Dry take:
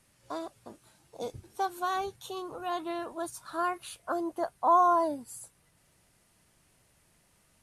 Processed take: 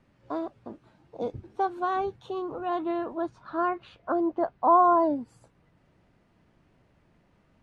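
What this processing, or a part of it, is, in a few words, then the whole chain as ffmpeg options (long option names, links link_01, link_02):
phone in a pocket: -filter_complex "[0:a]asettb=1/sr,asplit=3[link_01][link_02][link_03];[link_01]atrim=end=3.164[link_04];[link_02]atrim=start=3.16:end=4.84,asetpts=PTS-STARTPTS,afade=type=in:duration=0.004:curve=qsin,afade=type=out:start_time=1.676:duration=0.004:curve=qsin,lowpass=5100[link_05];[link_03]atrim=start=4.836[link_06];[link_04][link_05]acrossfade=duration=0.004:curve1=hsin:curve2=qsin[link_07];[link_07][link_06]acrossfade=duration=0.004:curve1=qsin:curve2=hsin,lowpass=3900,equalizer=frequency=260:width_type=o:width=1.2:gain=4.5,highshelf=frequency=2200:gain=-11.5,volume=4.5dB"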